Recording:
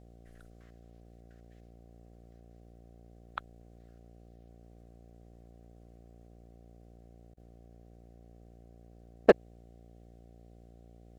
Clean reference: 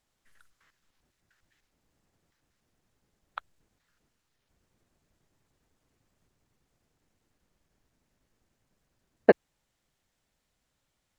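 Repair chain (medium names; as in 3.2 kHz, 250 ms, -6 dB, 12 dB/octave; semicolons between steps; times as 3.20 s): clip repair -8 dBFS; de-hum 58.1 Hz, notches 13; interpolate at 7.34 s, 29 ms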